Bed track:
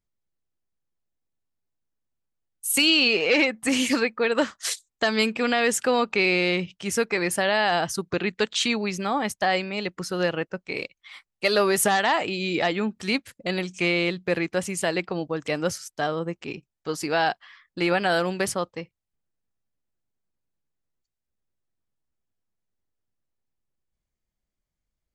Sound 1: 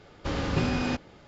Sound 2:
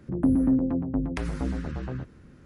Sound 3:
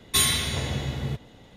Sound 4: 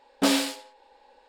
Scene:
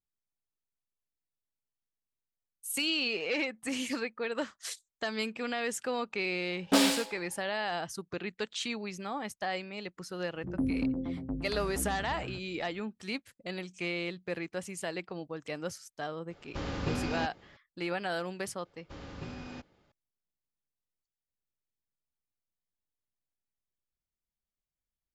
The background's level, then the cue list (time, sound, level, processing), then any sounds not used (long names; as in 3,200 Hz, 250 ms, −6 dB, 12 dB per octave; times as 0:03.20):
bed track −11.5 dB
0:06.50: mix in 4 −2 dB
0:10.35: mix in 2 −9 dB
0:16.30: mix in 1 −6.5 dB
0:18.65: mix in 1 −16 dB
not used: 3